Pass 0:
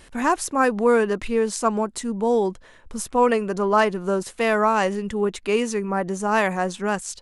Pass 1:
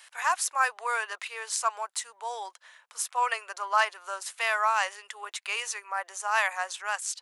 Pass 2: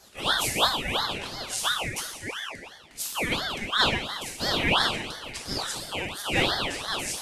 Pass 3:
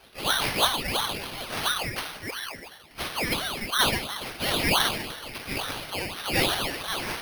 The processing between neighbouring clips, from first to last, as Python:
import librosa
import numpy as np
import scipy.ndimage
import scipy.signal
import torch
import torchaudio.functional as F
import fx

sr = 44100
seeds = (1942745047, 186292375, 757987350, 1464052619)

y1 = scipy.signal.sosfilt(scipy.signal.bessel(6, 1200.0, 'highpass', norm='mag', fs=sr, output='sos'), x)
y2 = fx.rev_plate(y1, sr, seeds[0], rt60_s=1.2, hf_ratio=0.85, predelay_ms=0, drr_db=-3.0)
y2 = fx.ring_lfo(y2, sr, carrier_hz=1800.0, swing_pct=45, hz=2.9)
y3 = np.repeat(y2[::6], 6)[:len(y2)]